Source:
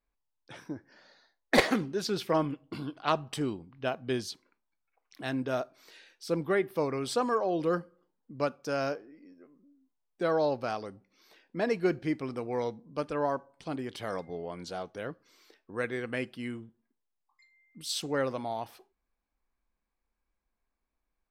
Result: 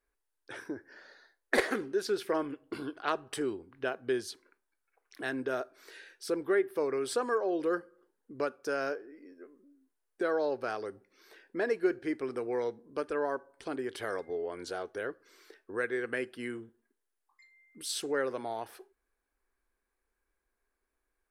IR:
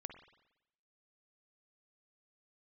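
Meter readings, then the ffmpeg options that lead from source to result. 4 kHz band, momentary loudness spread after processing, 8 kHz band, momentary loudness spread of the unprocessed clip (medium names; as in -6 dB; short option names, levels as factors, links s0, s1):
-4.5 dB, 15 LU, -0.5 dB, 13 LU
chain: -af "equalizer=f=160:t=o:w=0.67:g=-11,equalizer=f=400:t=o:w=0.67:g=11,equalizer=f=1600:t=o:w=0.67:g=10,equalizer=f=10000:t=o:w=0.67:g=9,acompressor=threshold=0.0158:ratio=1.5,volume=0.841"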